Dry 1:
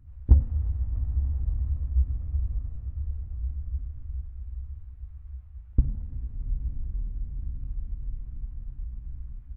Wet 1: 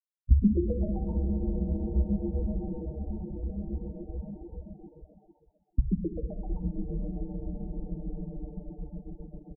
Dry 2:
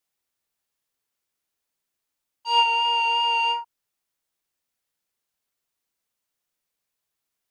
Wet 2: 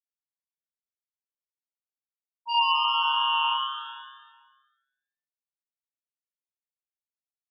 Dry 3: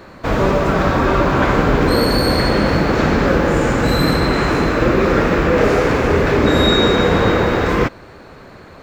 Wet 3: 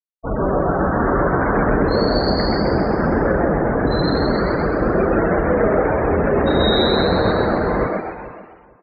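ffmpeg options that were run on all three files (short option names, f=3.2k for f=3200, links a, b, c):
-filter_complex "[0:a]afftfilt=real='re*gte(hypot(re,im),0.224)':imag='im*gte(hypot(re,im),0.224)':win_size=1024:overlap=0.75,asplit=2[a][b];[b]asplit=6[c][d][e][f][g][h];[c]adelay=129,afreqshift=140,volume=-3.5dB[i];[d]adelay=258,afreqshift=280,volume=-9.9dB[j];[e]adelay=387,afreqshift=420,volume=-16.3dB[k];[f]adelay=516,afreqshift=560,volume=-22.6dB[l];[g]adelay=645,afreqshift=700,volume=-29dB[m];[h]adelay=774,afreqshift=840,volume=-35.4dB[n];[i][j][k][l][m][n]amix=inputs=6:normalize=0[o];[a][o]amix=inputs=2:normalize=0,flanger=delay=1.8:depth=3.2:regen=-74:speed=1.5:shape=sinusoidal,asplit=2[p][q];[q]adelay=447,lowpass=f=2.1k:p=1,volume=-16dB,asplit=2[r][s];[s]adelay=447,lowpass=f=2.1k:p=1,volume=0.18[t];[r][t]amix=inputs=2:normalize=0[u];[p][u]amix=inputs=2:normalize=0"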